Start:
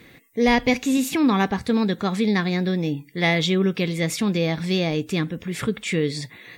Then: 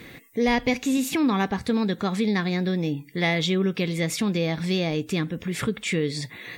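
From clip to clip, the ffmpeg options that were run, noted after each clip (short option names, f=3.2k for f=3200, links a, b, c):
-af "acompressor=threshold=-39dB:ratio=1.5,volume=5dB"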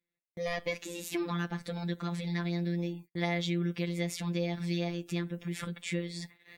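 -af "afftfilt=real='hypot(re,im)*cos(PI*b)':imag='0':win_size=1024:overlap=0.75,agate=range=-38dB:threshold=-40dB:ratio=16:detection=peak,volume=-6.5dB"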